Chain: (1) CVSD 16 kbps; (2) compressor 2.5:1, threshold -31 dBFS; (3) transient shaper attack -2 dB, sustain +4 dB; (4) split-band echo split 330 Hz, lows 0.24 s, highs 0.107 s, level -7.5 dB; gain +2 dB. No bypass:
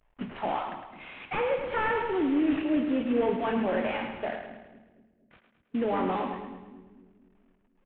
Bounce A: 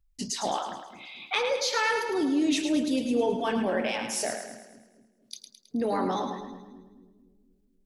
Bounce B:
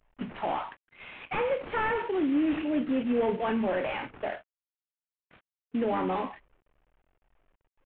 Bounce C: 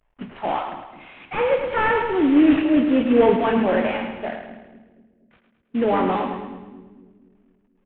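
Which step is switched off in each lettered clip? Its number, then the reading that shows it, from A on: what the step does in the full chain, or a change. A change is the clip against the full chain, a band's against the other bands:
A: 1, 2 kHz band +2.5 dB; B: 4, echo-to-direct -6.0 dB to none; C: 2, mean gain reduction 6.5 dB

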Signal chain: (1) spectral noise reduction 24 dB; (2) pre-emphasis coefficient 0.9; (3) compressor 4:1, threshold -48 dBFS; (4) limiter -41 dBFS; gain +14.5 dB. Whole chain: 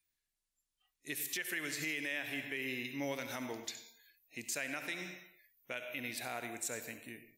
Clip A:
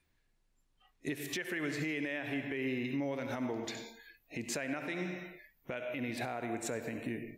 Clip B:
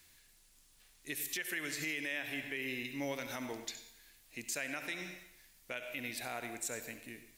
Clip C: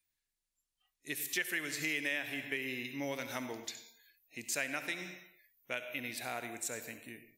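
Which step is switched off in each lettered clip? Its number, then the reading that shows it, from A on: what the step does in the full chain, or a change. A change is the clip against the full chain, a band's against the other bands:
2, 8 kHz band -9.0 dB; 1, momentary loudness spread change +3 LU; 4, crest factor change +6.0 dB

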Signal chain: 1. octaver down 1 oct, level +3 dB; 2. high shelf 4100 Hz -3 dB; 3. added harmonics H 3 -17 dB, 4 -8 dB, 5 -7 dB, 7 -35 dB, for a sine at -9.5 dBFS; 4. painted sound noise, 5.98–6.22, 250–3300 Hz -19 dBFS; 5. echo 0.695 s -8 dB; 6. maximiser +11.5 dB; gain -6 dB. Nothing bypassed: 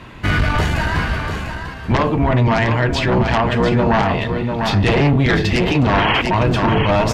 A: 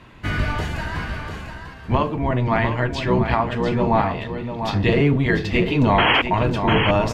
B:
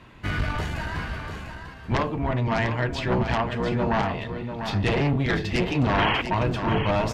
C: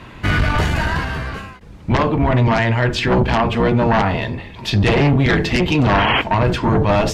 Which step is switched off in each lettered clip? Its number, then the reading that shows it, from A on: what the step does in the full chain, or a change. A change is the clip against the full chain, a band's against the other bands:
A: 3, 125 Hz band -2.0 dB; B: 6, crest factor change +6.0 dB; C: 5, momentary loudness spread change +5 LU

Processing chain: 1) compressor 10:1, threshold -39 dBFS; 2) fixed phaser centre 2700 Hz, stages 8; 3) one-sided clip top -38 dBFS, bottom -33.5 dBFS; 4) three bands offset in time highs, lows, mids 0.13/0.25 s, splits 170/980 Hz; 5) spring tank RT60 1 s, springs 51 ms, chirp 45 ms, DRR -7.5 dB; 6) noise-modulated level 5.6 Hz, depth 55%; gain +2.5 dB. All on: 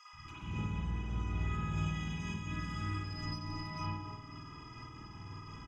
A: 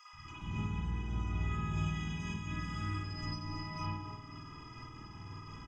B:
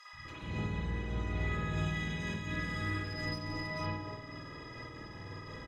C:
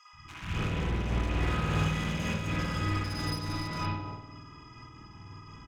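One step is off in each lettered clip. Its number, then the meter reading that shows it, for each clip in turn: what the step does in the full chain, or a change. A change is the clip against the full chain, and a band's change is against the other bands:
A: 3, distortion -17 dB; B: 2, momentary loudness spread change -2 LU; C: 1, mean gain reduction 9.0 dB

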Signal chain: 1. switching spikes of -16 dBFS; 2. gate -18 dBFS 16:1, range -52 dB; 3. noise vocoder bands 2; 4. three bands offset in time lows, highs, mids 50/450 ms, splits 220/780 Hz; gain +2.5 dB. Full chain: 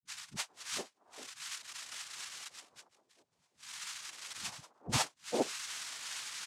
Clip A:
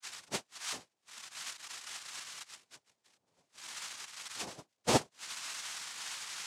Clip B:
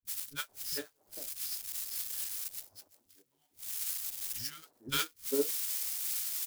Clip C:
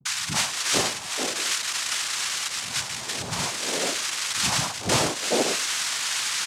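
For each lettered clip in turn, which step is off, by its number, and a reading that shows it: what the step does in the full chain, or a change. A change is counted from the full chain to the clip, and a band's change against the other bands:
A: 4, echo-to-direct 20.5 dB to none; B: 3, 125 Hz band -7.0 dB; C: 2, momentary loudness spread change -10 LU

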